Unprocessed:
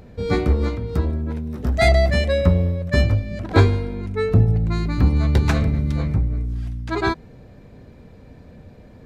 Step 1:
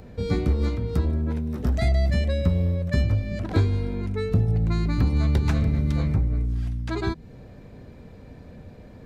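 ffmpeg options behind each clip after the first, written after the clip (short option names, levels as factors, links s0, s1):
-filter_complex "[0:a]acrossover=split=310|2800[s0][s1][s2];[s0]acompressor=threshold=0.126:ratio=4[s3];[s1]acompressor=threshold=0.02:ratio=4[s4];[s2]acompressor=threshold=0.00794:ratio=4[s5];[s3][s4][s5]amix=inputs=3:normalize=0"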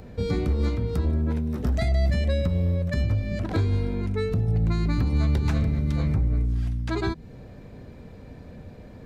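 -af "alimiter=limit=0.158:level=0:latency=1:release=119,volume=1.12"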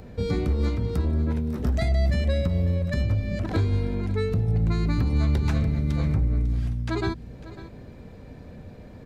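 -af "aecho=1:1:549:0.15"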